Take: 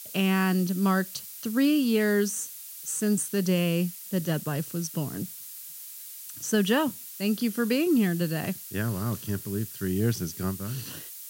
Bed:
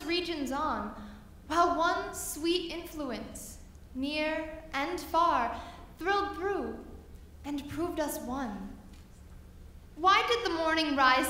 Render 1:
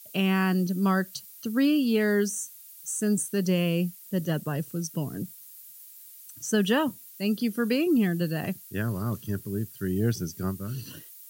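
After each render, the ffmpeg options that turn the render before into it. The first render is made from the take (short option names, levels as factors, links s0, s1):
-af "afftdn=nr=10:nf=-42"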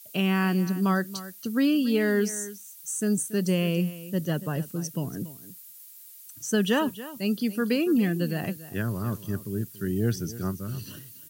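-af "aecho=1:1:283:0.168"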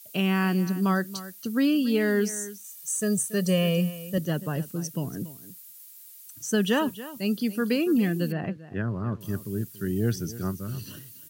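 -filter_complex "[0:a]asettb=1/sr,asplit=3[s0][s1][s2];[s0]atrim=end=2.644[s3];[s1]atrim=start=2.64:end=4.18,asetpts=PTS-STARTPTS,afade=t=in:d=0.004:c=qsin,afade=t=out:st=1.536:d=0.004:c=qsin,aecho=1:1:1.7:0.91,atrim=end_sample=67914[s4];[s2]atrim=start=4.176[s5];[s3][s4]acrossfade=d=0.004:c1=hsin:c2=qsin[s6];[s6][s5]acrossfade=d=0.004:c1=qsin:c2=hsin,asettb=1/sr,asplit=3[s7][s8][s9];[s7]atrim=end=8.324[s10];[s8]atrim=start=8.32:end=9.21,asetpts=PTS-STARTPTS,afade=t=in:d=0.004:c=qsin,afade=t=out:st=0.886:d=0.004:c=qsin,lowpass=2100[s11];[s9]atrim=start=9.206[s12];[s10][s11]acrossfade=d=0.004:c1=hsin:c2=qsin[s13];[s13][s12]acrossfade=d=0.004:c1=qsin:c2=hsin"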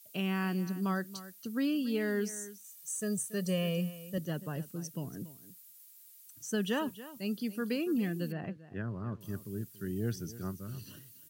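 -af "volume=0.376"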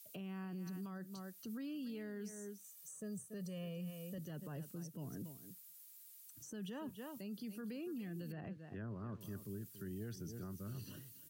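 -filter_complex "[0:a]acrossover=split=160|1100[s0][s1][s2];[s0]acompressor=threshold=0.00501:ratio=4[s3];[s1]acompressor=threshold=0.00708:ratio=4[s4];[s2]acompressor=threshold=0.00178:ratio=4[s5];[s3][s4][s5]amix=inputs=3:normalize=0,alimiter=level_in=5.62:limit=0.0631:level=0:latency=1:release=24,volume=0.178"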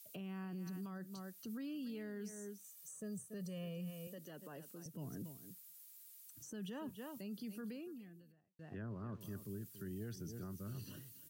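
-filter_complex "[0:a]asettb=1/sr,asplit=3[s0][s1][s2];[s0]atrim=end=4.074[s3];[s1]atrim=start=4.07:end=4.86,asetpts=PTS-STARTPTS,afade=t=in:d=0.004:c=qsin,afade=t=out:st=0.786:d=0.004:c=qsin,highpass=290[s4];[s2]atrim=start=4.856[s5];[s3][s4]acrossfade=d=0.004:c1=hsin:c2=qsin[s6];[s6][s5]acrossfade=d=0.004:c1=qsin:c2=hsin,asplit=2[s7][s8];[s7]atrim=end=8.59,asetpts=PTS-STARTPTS,afade=t=out:st=7.65:d=0.94:c=qua[s9];[s8]atrim=start=8.59,asetpts=PTS-STARTPTS,afade=t=in:d=0.004:c=hsin[s10];[s9][s10]concat=n=2:v=0:a=1"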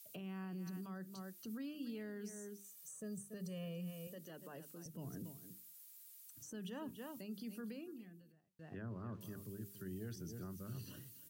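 -af "bandreject=f=50:t=h:w=6,bandreject=f=100:t=h:w=6,bandreject=f=150:t=h:w=6,bandreject=f=200:t=h:w=6,bandreject=f=250:t=h:w=6,bandreject=f=300:t=h:w=6,bandreject=f=350:t=h:w=6,bandreject=f=400:t=h:w=6"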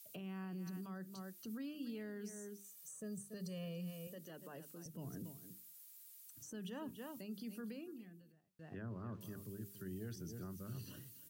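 -filter_complex "[0:a]asettb=1/sr,asplit=3[s0][s1][s2];[s0]atrim=end=3.204[s3];[s1]atrim=start=3.2:end=3.97,asetpts=PTS-STARTPTS,afade=t=in:d=0.004:c=qsin,afade=t=out:st=0.766:d=0.004:c=qsin,equalizer=f=4500:t=o:w=0.38:g=8[s4];[s2]atrim=start=3.966[s5];[s3][s4]acrossfade=d=0.004:c1=hsin:c2=qsin[s6];[s6][s5]acrossfade=d=0.004:c1=qsin:c2=hsin"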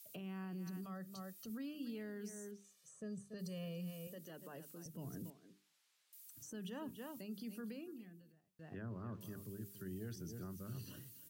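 -filter_complex "[0:a]asettb=1/sr,asplit=3[s0][s1][s2];[s0]atrim=end=0.844[s3];[s1]atrim=start=0.84:end=1.5,asetpts=PTS-STARTPTS,afade=t=in:d=0.004:c=qsin,afade=t=out:st=0.656:d=0.004:c=qsin,aecho=1:1:1.6:0.52,atrim=end_sample=29106[s4];[s2]atrim=start=1.496[s5];[s3][s4]acrossfade=d=0.004:c1=hsin:c2=qsin[s6];[s6][s5]acrossfade=d=0.004:c1=qsin:c2=hsin,asettb=1/sr,asplit=3[s7][s8][s9];[s7]atrim=end=2.514[s10];[s8]atrim=start=2.51:end=3.39,asetpts=PTS-STARTPTS,afade=t=in:d=0.004:c=qsin,afade=t=out:st=0.876:d=0.004:c=qsin,lowpass=5400[s11];[s9]atrim=start=3.386[s12];[s10][s11]acrossfade=d=0.004:c1=hsin:c2=qsin[s13];[s13][s12]acrossfade=d=0.004:c1=qsin:c2=hsin,asettb=1/sr,asplit=3[s14][s15][s16];[s14]atrim=end=5.304[s17];[s15]atrim=start=5.3:end=6.13,asetpts=PTS-STARTPTS,afade=t=in:d=0.004:c=qsin,afade=t=out:st=0.826:d=0.004:c=qsin,highpass=280,lowpass=3500[s18];[s16]atrim=start=6.126[s19];[s17][s18]acrossfade=d=0.004:c1=hsin:c2=qsin[s20];[s20][s19]acrossfade=d=0.004:c1=qsin:c2=hsin"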